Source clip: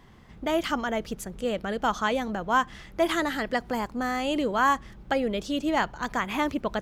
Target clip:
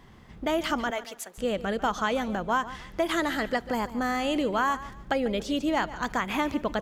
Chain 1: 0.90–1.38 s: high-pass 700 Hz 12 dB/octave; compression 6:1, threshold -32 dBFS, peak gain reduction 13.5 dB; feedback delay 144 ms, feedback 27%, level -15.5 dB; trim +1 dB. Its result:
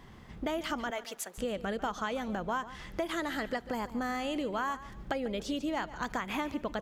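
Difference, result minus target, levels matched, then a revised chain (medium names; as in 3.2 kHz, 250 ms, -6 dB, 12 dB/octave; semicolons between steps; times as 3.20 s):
compression: peak gain reduction +8 dB
0.90–1.38 s: high-pass 700 Hz 12 dB/octave; compression 6:1, threshold -22.5 dBFS, peak gain reduction 6 dB; feedback delay 144 ms, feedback 27%, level -15.5 dB; trim +1 dB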